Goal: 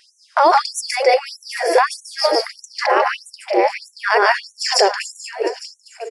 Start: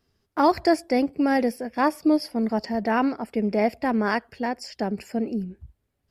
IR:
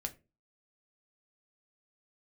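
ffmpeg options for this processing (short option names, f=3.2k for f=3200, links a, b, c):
-filter_complex "[0:a]asplit=2[a][b];[1:a]atrim=start_sample=2205,adelay=146[c];[b][c]afir=irnorm=-1:irlink=0,volume=0dB[d];[a][d]amix=inputs=2:normalize=0,acompressor=threshold=-34dB:ratio=1.5,asplit=2[e][f];[f]aecho=0:1:74:0.075[g];[e][g]amix=inputs=2:normalize=0,aresample=22050,aresample=44100,aecho=1:1:855:0.133,asettb=1/sr,asplit=3[h][i][j];[h]atrim=end=2.614[k];[i]atrim=start=2.61:end=3.82,asetpts=PTS-STARTPTS,afade=t=in:d=0.004:c=qsin,afade=t=out:st=1.206:d=0.004:c=qsin,aeval=exprs='val(0)*sin(2*PI*150*n/s)':c=same[l];[j]atrim=start=3.816[m];[k][l]acrossfade=d=0.004:c1=hsin:c2=qsin[n];[n][m]acrossfade=d=0.004:c1=qsin:c2=hsin,alimiter=level_in=26.5dB:limit=-1dB:release=50:level=0:latency=1,afftfilt=real='re*gte(b*sr/1024,340*pow(5800/340,0.5+0.5*sin(2*PI*1.6*pts/sr)))':imag='im*gte(b*sr/1024,340*pow(5800/340,0.5+0.5*sin(2*PI*1.6*pts/sr)))':win_size=1024:overlap=0.75,volume=-1dB"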